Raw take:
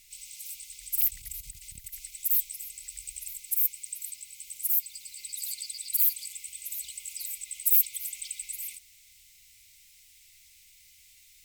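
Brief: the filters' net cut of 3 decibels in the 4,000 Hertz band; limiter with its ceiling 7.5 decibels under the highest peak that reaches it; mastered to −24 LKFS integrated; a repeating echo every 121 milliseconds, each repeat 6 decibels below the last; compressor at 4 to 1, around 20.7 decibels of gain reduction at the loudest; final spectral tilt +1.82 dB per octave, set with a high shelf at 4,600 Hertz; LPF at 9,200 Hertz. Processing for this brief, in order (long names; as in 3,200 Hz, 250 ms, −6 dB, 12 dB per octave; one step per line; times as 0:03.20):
low-pass filter 9,200 Hz
parametric band 4,000 Hz −7.5 dB
high-shelf EQ 4,600 Hz +6.5 dB
downward compressor 4 to 1, threshold −49 dBFS
brickwall limiter −39 dBFS
repeating echo 121 ms, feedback 50%, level −6 dB
level +25.5 dB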